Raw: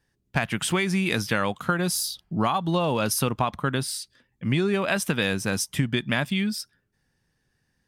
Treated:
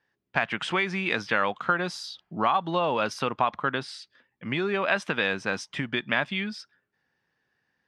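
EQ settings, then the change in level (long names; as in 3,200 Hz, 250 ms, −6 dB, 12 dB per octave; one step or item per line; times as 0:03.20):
high-pass filter 950 Hz 6 dB per octave
high-frequency loss of the air 140 metres
high-shelf EQ 3,500 Hz −10 dB
+6.0 dB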